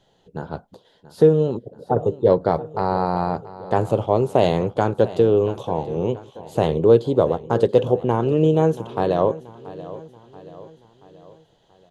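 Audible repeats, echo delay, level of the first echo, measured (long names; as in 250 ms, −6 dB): 3, 681 ms, −17.0 dB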